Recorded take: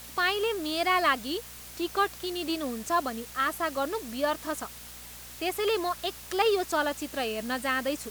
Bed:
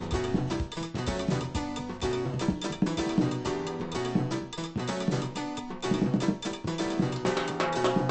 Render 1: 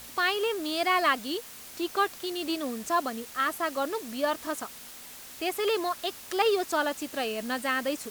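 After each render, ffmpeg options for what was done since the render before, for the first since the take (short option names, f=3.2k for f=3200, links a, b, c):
-af "bandreject=f=60:t=h:w=4,bandreject=f=120:t=h:w=4,bandreject=f=180:t=h:w=4"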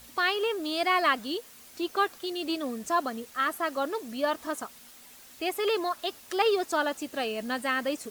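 -af "afftdn=nr=7:nf=-46"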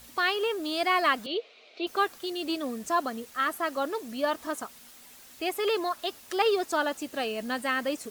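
-filter_complex "[0:a]asettb=1/sr,asplit=3[a][b][c];[a]atrim=end=1.264[d];[b]atrim=start=1.26:end=1.87,asetpts=PTS-STARTPTS,afade=t=in:d=0.004:c=qsin,afade=t=out:st=0.606:d=0.004:c=qsin,highpass=f=350:w=0.5412,highpass=f=350:w=1.3066,equalizer=f=440:t=q:w=4:g=7,equalizer=f=640:t=q:w=4:g=9,equalizer=f=960:t=q:w=4:g=-8,equalizer=f=1.7k:t=q:w=4:g=-10,equalizer=f=2.4k:t=q:w=4:g=9,equalizer=f=3.9k:t=q:w=4:g=6,lowpass=f=4k:w=0.5412,lowpass=f=4k:w=1.3066[e];[c]atrim=start=1.866[f];[d][e]acrossfade=d=0.004:c1=hsin:c2=qsin[g];[g][f]acrossfade=d=0.004:c1=qsin:c2=hsin"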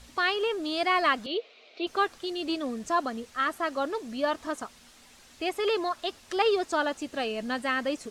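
-af "lowpass=7.4k,lowshelf=f=80:g=11"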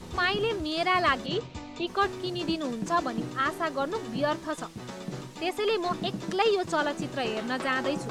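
-filter_complex "[1:a]volume=-8.5dB[a];[0:a][a]amix=inputs=2:normalize=0"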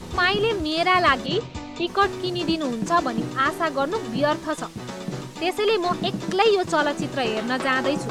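-af "volume=6dB"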